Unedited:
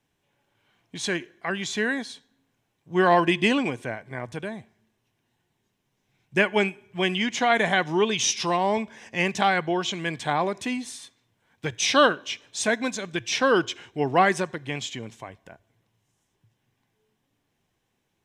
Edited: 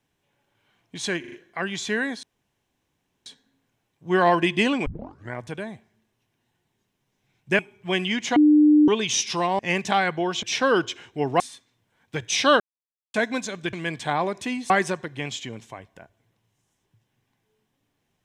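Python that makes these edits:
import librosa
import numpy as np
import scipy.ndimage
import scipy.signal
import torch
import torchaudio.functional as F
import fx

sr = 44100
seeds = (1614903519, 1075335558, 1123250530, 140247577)

y = fx.edit(x, sr, fx.stutter(start_s=1.2, slice_s=0.04, count=4),
    fx.insert_room_tone(at_s=2.11, length_s=1.03),
    fx.tape_start(start_s=3.71, length_s=0.47),
    fx.cut(start_s=6.44, length_s=0.25),
    fx.bleep(start_s=7.46, length_s=0.52, hz=300.0, db=-11.5),
    fx.cut(start_s=8.69, length_s=0.4),
    fx.swap(start_s=9.93, length_s=0.97, other_s=13.23, other_length_s=0.97),
    fx.silence(start_s=12.1, length_s=0.54), tone=tone)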